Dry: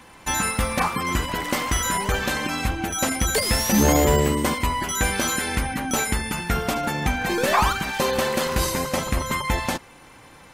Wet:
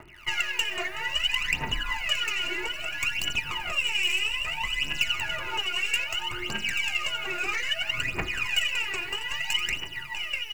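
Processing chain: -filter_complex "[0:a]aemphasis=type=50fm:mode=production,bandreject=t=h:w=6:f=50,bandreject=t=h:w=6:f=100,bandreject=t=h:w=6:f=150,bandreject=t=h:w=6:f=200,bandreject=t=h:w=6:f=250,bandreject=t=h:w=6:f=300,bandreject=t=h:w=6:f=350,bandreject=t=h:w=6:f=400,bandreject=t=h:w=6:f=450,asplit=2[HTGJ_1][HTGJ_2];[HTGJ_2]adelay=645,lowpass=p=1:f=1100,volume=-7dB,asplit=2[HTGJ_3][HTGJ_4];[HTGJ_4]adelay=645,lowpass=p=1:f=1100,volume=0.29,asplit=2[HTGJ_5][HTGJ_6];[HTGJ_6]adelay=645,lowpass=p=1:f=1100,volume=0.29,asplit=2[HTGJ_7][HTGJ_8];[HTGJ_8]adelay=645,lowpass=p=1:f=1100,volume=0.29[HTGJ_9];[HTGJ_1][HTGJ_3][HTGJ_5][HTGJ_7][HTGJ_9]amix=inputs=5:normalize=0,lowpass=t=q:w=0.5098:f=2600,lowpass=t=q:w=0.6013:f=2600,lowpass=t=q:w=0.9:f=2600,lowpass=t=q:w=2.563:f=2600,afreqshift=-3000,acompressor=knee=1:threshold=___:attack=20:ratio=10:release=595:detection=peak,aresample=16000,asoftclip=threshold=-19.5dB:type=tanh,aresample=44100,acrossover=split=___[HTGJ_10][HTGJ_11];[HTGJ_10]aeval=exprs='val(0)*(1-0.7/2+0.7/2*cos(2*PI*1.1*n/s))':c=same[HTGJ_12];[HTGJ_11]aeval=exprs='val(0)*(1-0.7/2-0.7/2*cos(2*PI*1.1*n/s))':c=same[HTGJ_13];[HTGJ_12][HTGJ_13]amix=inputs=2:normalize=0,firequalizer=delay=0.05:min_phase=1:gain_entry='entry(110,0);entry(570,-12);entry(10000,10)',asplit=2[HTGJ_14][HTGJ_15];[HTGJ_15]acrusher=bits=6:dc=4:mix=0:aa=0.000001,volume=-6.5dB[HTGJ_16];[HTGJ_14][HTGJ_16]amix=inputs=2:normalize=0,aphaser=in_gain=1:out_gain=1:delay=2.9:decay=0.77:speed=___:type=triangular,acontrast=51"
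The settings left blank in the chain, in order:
-25dB, 1700, 0.61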